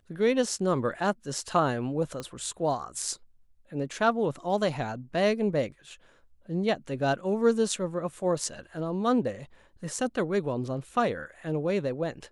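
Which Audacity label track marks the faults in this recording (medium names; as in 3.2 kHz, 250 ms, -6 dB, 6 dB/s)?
2.200000	2.200000	pop -21 dBFS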